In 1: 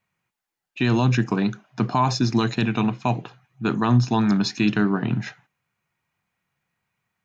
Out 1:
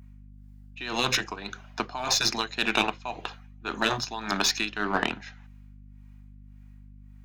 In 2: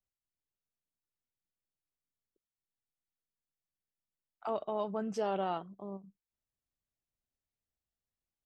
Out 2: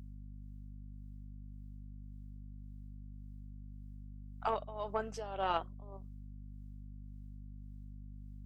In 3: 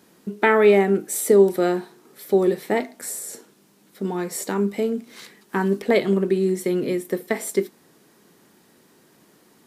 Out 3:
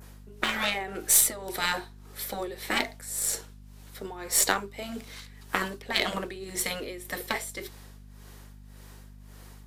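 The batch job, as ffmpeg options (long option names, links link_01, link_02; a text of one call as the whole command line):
ffmpeg -i in.wav -filter_complex "[0:a]adynamicequalizer=threshold=0.00794:dfrequency=3800:dqfactor=1.1:tfrequency=3800:tqfactor=1.1:attack=5:release=100:ratio=0.375:range=2:mode=boostabove:tftype=bell,highpass=550,asplit=2[link_01][link_02];[link_02]asoftclip=type=hard:threshold=-21dB,volume=-11dB[link_03];[link_01][link_03]amix=inputs=2:normalize=0,tremolo=f=1.8:d=0.84,afftfilt=real='re*lt(hypot(re,im),0.178)':imag='im*lt(hypot(re,im),0.178)':win_size=1024:overlap=0.75,aeval=exprs='0.211*(cos(1*acos(clip(val(0)/0.211,-1,1)))-cos(1*PI/2))+0.0211*(cos(2*acos(clip(val(0)/0.211,-1,1)))-cos(2*PI/2))+0.00168*(cos(3*acos(clip(val(0)/0.211,-1,1)))-cos(3*PI/2))+0.0133*(cos(4*acos(clip(val(0)/0.211,-1,1)))-cos(4*PI/2))+0.0119*(cos(7*acos(clip(val(0)/0.211,-1,1)))-cos(7*PI/2))':channel_layout=same,aeval=exprs='val(0)+0.00178*(sin(2*PI*50*n/s)+sin(2*PI*2*50*n/s)/2+sin(2*PI*3*50*n/s)/3+sin(2*PI*4*50*n/s)/4+sin(2*PI*5*50*n/s)/5)':channel_layout=same,volume=8dB" out.wav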